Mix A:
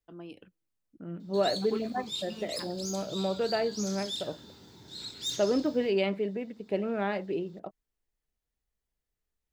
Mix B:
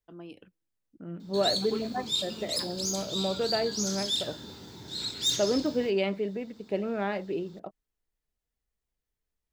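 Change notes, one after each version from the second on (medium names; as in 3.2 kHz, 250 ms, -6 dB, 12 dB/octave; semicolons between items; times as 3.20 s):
background +7.0 dB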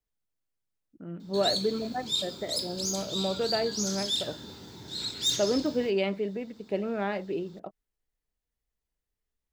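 first voice: muted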